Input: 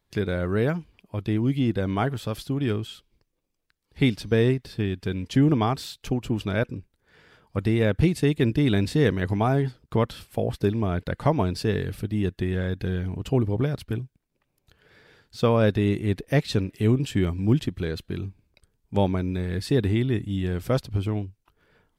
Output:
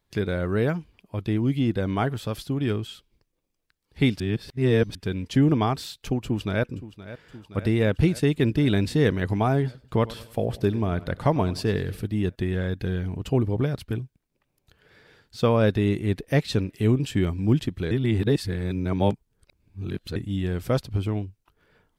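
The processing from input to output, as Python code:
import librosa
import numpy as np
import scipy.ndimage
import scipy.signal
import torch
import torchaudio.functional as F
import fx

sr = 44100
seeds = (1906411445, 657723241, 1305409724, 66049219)

y = fx.echo_throw(x, sr, start_s=6.24, length_s=0.43, ms=520, feedback_pct=75, wet_db=-15.0)
y = fx.echo_feedback(y, sr, ms=97, feedback_pct=45, wet_db=-18.5, at=(9.65, 12.07))
y = fx.edit(y, sr, fx.reverse_span(start_s=4.2, length_s=0.75),
    fx.reverse_span(start_s=17.91, length_s=2.25), tone=tone)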